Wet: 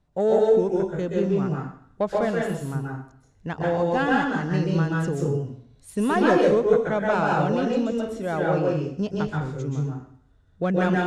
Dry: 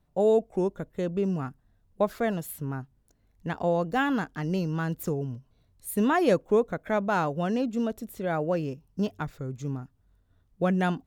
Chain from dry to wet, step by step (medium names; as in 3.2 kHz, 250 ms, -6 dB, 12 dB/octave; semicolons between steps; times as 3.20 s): self-modulated delay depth 0.067 ms; in parallel at -12 dB: sine folder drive 5 dB, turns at -10 dBFS; on the sum: low-pass 8.7 kHz 24 dB/octave; plate-style reverb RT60 0.58 s, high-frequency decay 0.9×, pre-delay 115 ms, DRR -2.5 dB; trim -3.5 dB